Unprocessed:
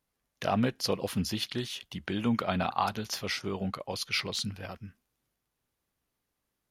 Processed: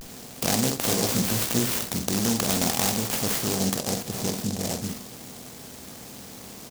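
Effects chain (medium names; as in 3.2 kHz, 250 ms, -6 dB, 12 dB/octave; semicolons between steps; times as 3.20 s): spectral levelling over time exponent 0.4; 3.77–4.81 s: high-order bell 3 kHz -15 dB 2.7 oct; in parallel at -3 dB: compression, threshold -29 dBFS, peak gain reduction 10.5 dB; on the sum: vibrato 0.39 Hz 44 cents; 0.84–1.92 s: doubling 17 ms -3 dB; on a send: early reflections 47 ms -8 dB, 62 ms -10 dB; on the sum: delay time shaken by noise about 5.9 kHz, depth 0.23 ms; trim -3 dB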